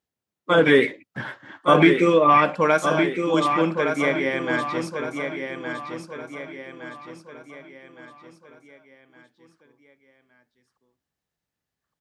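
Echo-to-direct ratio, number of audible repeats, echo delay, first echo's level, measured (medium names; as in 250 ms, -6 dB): -6.0 dB, 5, 1164 ms, -7.0 dB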